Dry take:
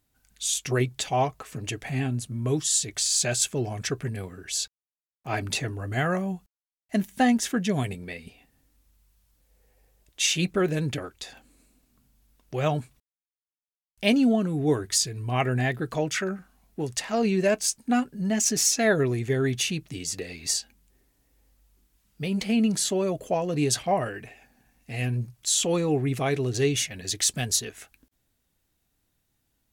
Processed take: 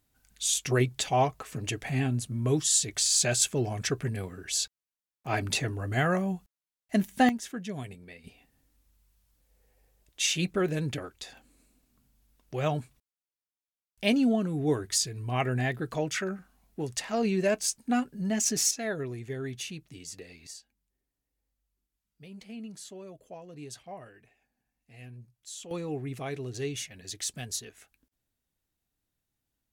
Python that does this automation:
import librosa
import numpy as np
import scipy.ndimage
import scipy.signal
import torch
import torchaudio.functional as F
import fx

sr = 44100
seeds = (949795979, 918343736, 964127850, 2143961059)

y = fx.gain(x, sr, db=fx.steps((0.0, -0.5), (7.29, -11.0), (8.24, -3.5), (18.71, -11.0), (20.47, -19.0), (25.71, -10.0)))